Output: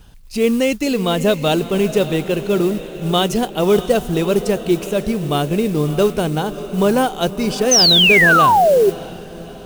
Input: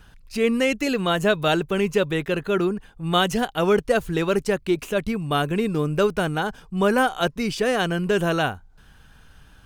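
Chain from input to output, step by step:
parametric band 1,600 Hz −10 dB 1.1 octaves
on a send: feedback delay with all-pass diffusion 623 ms, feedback 53%, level −12.5 dB
on the sum: sound drawn into the spectrogram fall, 0:07.71–0:08.90, 370–6,400 Hz −17 dBFS
noise that follows the level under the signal 23 dB
level +5.5 dB

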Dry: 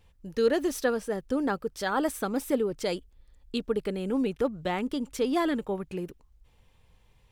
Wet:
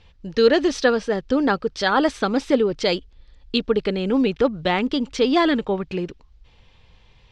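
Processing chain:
low-pass filter 4,700 Hz 24 dB per octave
high-shelf EQ 3,300 Hz +11 dB
level +8 dB

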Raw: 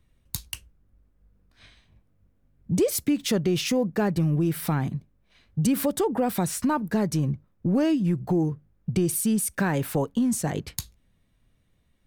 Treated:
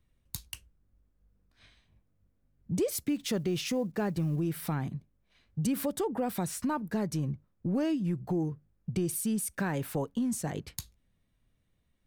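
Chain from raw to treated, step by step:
0:03.08–0:04.41: one scale factor per block 7 bits
level −7 dB

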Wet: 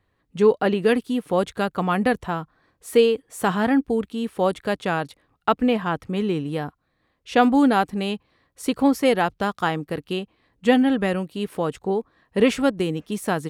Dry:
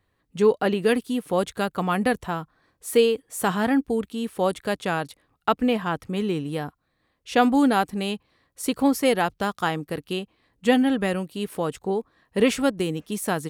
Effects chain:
high-shelf EQ 5,800 Hz −8.5 dB
level +2 dB

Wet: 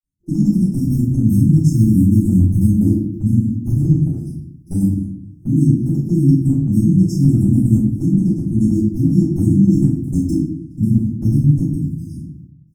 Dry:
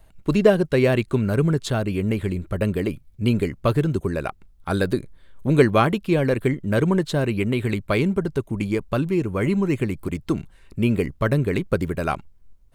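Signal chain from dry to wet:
camcorder AGC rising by 23 dB per second
high-pass filter 120 Hz 12 dB per octave
downward expander −44 dBFS
brick-wall band-stop 350–4,900 Hz
0:00.59–0:02.83: high-shelf EQ 9,400 Hz +7 dB
harmonic and percussive parts rebalanced harmonic +3 dB
comb filter 1.1 ms, depth 40%
output level in coarse steps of 18 dB
rectangular room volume 120 cubic metres, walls mixed, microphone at 4.1 metres
level −8.5 dB

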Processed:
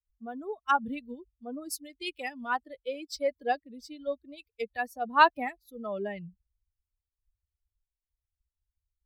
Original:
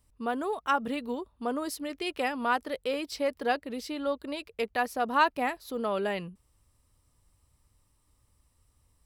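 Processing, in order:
spectral dynamics exaggerated over time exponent 2
multiband upward and downward expander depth 70%

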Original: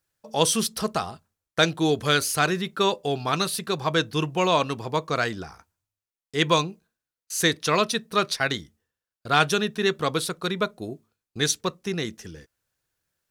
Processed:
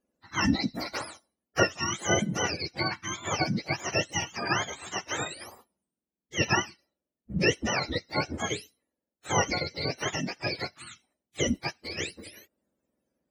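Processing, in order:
frequency axis turned over on the octave scale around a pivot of 940 Hz
gate on every frequency bin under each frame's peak −10 dB weak
level +3 dB

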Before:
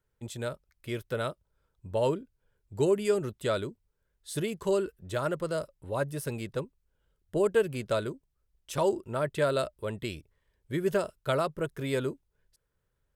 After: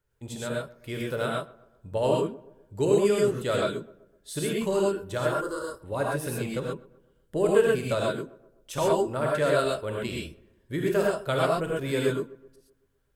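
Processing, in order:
0:05.27–0:05.73: phaser with its sweep stopped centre 660 Hz, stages 6
feedback echo with a low-pass in the loop 127 ms, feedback 50%, low-pass 1,700 Hz, level −20 dB
reverb whose tail is shaped and stops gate 150 ms rising, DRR −3 dB

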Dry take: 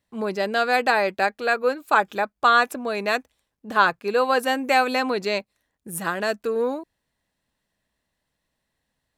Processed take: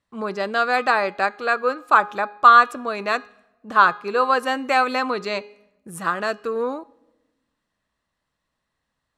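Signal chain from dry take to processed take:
low-pass filter 8,600 Hz 12 dB per octave
parametric band 1,200 Hz +10 dB 0.46 octaves
hum removal 413.5 Hz, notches 16
on a send: convolution reverb RT60 1.1 s, pre-delay 3 ms, DRR 24 dB
on the sum: level −1.5 dB

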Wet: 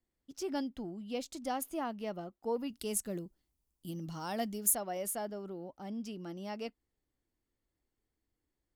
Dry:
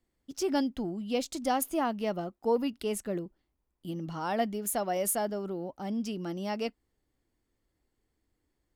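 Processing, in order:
0:02.70–0:04.75: bass and treble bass +5 dB, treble +13 dB
level −7.5 dB

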